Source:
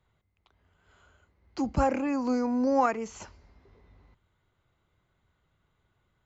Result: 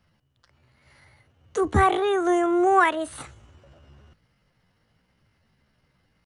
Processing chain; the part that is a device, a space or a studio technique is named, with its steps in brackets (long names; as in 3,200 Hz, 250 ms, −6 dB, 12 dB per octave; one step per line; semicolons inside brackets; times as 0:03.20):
chipmunk voice (pitch shifter +6 semitones)
level +6 dB